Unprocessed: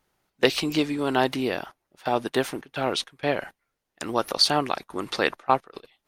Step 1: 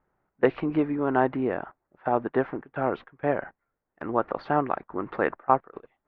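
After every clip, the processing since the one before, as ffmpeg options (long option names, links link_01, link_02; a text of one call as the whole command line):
ffmpeg -i in.wav -af "lowpass=frequency=1700:width=0.5412,lowpass=frequency=1700:width=1.3066" out.wav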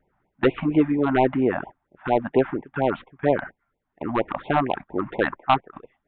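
ffmpeg -i in.wav -af "aresample=8000,volume=15dB,asoftclip=hard,volume=-15dB,aresample=44100,afftfilt=real='re*(1-between(b*sr/1024,390*pow(1500/390,0.5+0.5*sin(2*PI*4.3*pts/sr))/1.41,390*pow(1500/390,0.5+0.5*sin(2*PI*4.3*pts/sr))*1.41))':imag='im*(1-between(b*sr/1024,390*pow(1500/390,0.5+0.5*sin(2*PI*4.3*pts/sr))/1.41,390*pow(1500/390,0.5+0.5*sin(2*PI*4.3*pts/sr))*1.41))':win_size=1024:overlap=0.75,volume=6dB" out.wav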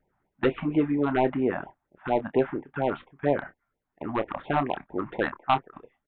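ffmpeg -i in.wav -filter_complex "[0:a]asplit=2[link_01][link_02];[link_02]adelay=28,volume=-12dB[link_03];[link_01][link_03]amix=inputs=2:normalize=0,volume=-4.5dB" out.wav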